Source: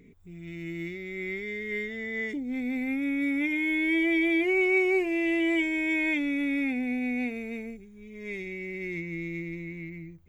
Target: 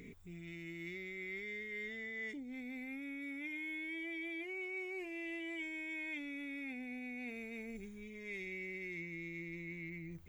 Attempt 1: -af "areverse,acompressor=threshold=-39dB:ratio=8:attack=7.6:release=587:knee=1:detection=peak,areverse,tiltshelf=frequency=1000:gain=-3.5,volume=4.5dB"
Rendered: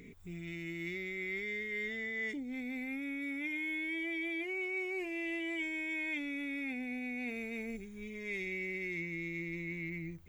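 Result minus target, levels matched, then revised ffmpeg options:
downward compressor: peak gain reduction −5.5 dB
-af "areverse,acompressor=threshold=-45.5dB:ratio=8:attack=7.6:release=587:knee=1:detection=peak,areverse,tiltshelf=frequency=1000:gain=-3.5,volume=4.5dB"

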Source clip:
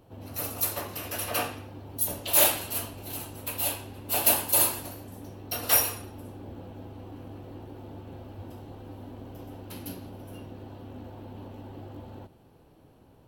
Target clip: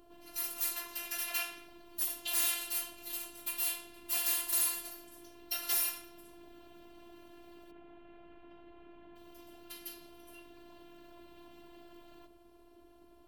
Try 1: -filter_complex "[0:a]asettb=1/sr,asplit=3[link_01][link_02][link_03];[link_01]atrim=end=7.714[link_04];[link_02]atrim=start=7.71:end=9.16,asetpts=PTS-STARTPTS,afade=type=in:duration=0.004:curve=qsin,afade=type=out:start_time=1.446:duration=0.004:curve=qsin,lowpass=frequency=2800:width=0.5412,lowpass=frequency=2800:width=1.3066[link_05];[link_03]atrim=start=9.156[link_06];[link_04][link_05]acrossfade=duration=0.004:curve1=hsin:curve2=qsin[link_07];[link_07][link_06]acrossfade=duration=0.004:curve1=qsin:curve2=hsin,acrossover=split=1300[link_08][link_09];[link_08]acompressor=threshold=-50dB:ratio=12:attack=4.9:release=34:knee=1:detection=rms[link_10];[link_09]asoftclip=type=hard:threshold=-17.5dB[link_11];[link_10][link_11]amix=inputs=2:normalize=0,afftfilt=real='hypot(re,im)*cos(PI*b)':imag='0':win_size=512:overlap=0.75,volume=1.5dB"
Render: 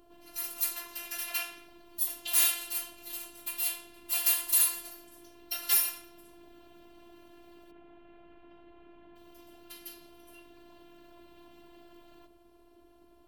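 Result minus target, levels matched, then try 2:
hard clipping: distortion −9 dB
-filter_complex "[0:a]asettb=1/sr,asplit=3[link_01][link_02][link_03];[link_01]atrim=end=7.714[link_04];[link_02]atrim=start=7.71:end=9.16,asetpts=PTS-STARTPTS,afade=type=in:duration=0.004:curve=qsin,afade=type=out:start_time=1.446:duration=0.004:curve=qsin,lowpass=frequency=2800:width=0.5412,lowpass=frequency=2800:width=1.3066[link_05];[link_03]atrim=start=9.156[link_06];[link_04][link_05]acrossfade=duration=0.004:curve1=hsin:curve2=qsin[link_07];[link_07][link_06]acrossfade=duration=0.004:curve1=qsin:curve2=hsin,acrossover=split=1300[link_08][link_09];[link_08]acompressor=threshold=-50dB:ratio=12:attack=4.9:release=34:knee=1:detection=rms[link_10];[link_09]asoftclip=type=hard:threshold=-27dB[link_11];[link_10][link_11]amix=inputs=2:normalize=0,afftfilt=real='hypot(re,im)*cos(PI*b)':imag='0':win_size=512:overlap=0.75,volume=1.5dB"

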